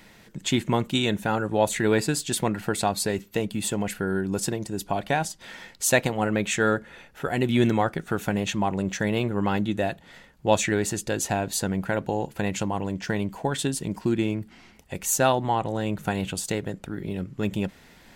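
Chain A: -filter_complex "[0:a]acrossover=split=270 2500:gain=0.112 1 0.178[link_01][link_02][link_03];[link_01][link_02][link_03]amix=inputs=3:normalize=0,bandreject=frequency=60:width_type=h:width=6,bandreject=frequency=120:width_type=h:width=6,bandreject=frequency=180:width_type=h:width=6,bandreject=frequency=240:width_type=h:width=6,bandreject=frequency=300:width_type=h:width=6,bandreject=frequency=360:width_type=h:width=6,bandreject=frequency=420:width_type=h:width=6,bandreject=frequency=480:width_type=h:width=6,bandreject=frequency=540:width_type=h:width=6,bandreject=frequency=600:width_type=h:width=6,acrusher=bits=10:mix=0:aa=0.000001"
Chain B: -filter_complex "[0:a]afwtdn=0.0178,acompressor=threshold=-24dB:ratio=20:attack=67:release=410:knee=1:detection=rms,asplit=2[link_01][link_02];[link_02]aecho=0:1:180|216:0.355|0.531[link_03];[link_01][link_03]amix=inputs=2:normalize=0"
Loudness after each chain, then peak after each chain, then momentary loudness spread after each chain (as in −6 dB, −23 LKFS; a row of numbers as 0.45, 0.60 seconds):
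−30.0, −28.0 LKFS; −8.0, −12.0 dBFS; 11, 6 LU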